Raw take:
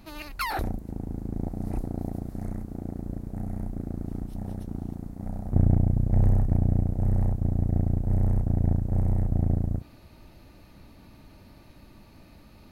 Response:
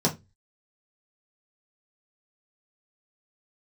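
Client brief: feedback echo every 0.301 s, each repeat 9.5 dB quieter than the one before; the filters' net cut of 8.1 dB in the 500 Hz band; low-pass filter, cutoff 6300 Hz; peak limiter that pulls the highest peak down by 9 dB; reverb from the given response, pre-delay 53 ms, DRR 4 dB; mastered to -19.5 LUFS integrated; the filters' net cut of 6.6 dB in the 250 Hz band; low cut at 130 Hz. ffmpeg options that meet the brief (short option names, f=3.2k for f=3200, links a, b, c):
-filter_complex "[0:a]highpass=130,lowpass=6.3k,equalizer=f=250:t=o:g=-6.5,equalizer=f=500:t=o:g=-9,alimiter=limit=-24dB:level=0:latency=1,aecho=1:1:301|602|903|1204:0.335|0.111|0.0365|0.012,asplit=2[a][b];[1:a]atrim=start_sample=2205,adelay=53[c];[b][c]afir=irnorm=-1:irlink=0,volume=-16dB[d];[a][d]amix=inputs=2:normalize=0,volume=13dB"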